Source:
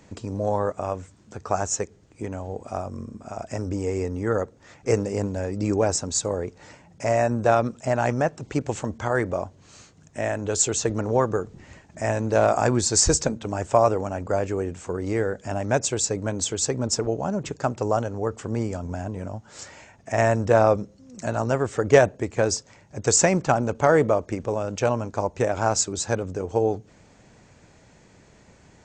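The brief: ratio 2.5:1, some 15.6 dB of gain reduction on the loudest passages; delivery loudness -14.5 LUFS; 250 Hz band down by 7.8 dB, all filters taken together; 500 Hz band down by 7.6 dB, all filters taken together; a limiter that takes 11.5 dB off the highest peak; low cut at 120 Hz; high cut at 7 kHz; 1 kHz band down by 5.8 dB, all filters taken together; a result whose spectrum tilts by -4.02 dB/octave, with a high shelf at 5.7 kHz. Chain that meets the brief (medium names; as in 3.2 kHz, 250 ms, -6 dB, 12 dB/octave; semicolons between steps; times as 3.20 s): high-pass 120 Hz; low-pass 7 kHz; peaking EQ 250 Hz -8 dB; peaking EQ 500 Hz -6 dB; peaking EQ 1 kHz -5 dB; treble shelf 5.7 kHz +6 dB; compression 2.5:1, threshold -40 dBFS; trim +28.5 dB; peak limiter -2 dBFS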